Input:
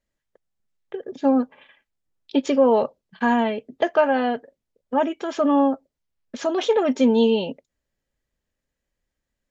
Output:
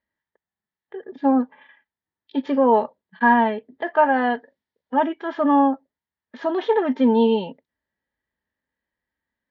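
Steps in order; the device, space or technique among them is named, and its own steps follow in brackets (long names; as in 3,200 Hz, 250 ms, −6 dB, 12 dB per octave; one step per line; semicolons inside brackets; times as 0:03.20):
0:04.30–0:05.07: high-shelf EQ 2,600 Hz +10 dB
guitar cabinet (loudspeaker in its box 88–4,100 Hz, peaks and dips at 130 Hz −7 dB, 550 Hz −4 dB, 920 Hz +7 dB, 1,800 Hz +9 dB, 2,600 Hz −6 dB)
harmonic and percussive parts rebalanced harmonic +9 dB
level −8 dB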